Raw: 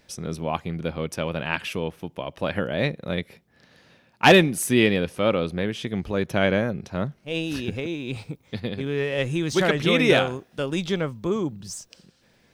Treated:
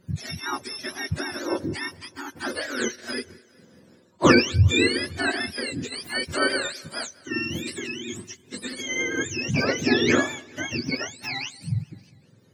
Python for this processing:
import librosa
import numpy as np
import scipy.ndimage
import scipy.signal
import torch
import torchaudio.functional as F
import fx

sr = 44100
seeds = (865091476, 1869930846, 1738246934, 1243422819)

y = fx.octave_mirror(x, sr, pivot_hz=940.0)
y = fx.echo_feedback(y, sr, ms=202, feedback_pct=58, wet_db=-24.0)